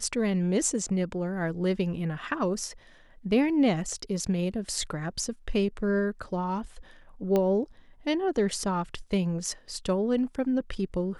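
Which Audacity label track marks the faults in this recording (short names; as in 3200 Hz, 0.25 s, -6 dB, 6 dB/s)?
7.360000	7.360000	pop -14 dBFS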